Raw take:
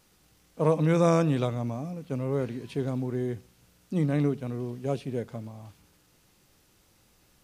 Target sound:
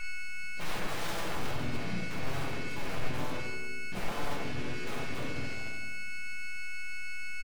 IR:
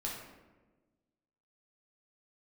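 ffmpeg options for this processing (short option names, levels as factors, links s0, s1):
-filter_complex "[0:a]adynamicequalizer=threshold=0.00251:dfrequency=1700:dqfactor=3.4:tfrequency=1700:tqfactor=3.4:attack=5:release=100:ratio=0.375:range=3:mode=cutabove:tftype=bell,asplit=2[s0][s1];[s1]adelay=61,lowpass=f=3400:p=1,volume=0.596,asplit=2[s2][s3];[s3]adelay=61,lowpass=f=3400:p=1,volume=0.3,asplit=2[s4][s5];[s5]adelay=61,lowpass=f=3400:p=1,volume=0.3,asplit=2[s6][s7];[s7]adelay=61,lowpass=f=3400:p=1,volume=0.3[s8];[s0][s2][s4][s6][s8]amix=inputs=5:normalize=0,aeval=exprs='(mod(14.1*val(0)+1,2)-1)/14.1':c=same,aeval=exprs='val(0)+0.02*sin(2*PI*2200*n/s)':c=same,aeval=exprs='(tanh(100*val(0)+0.5)-tanh(0.5))/100':c=same[s9];[1:a]atrim=start_sample=2205[s10];[s9][s10]afir=irnorm=-1:irlink=0,asplit=3[s11][s12][s13];[s12]asetrate=29433,aresample=44100,atempo=1.49831,volume=0.631[s14];[s13]asetrate=52444,aresample=44100,atempo=0.840896,volume=0.631[s15];[s11][s14][s15]amix=inputs=3:normalize=0"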